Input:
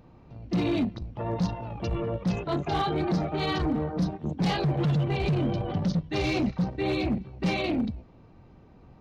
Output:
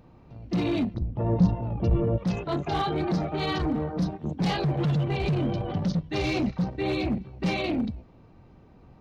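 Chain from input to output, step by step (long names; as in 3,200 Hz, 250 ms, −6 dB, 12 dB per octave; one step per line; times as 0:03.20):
0:00.94–0:02.18: tilt shelving filter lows +8 dB, about 780 Hz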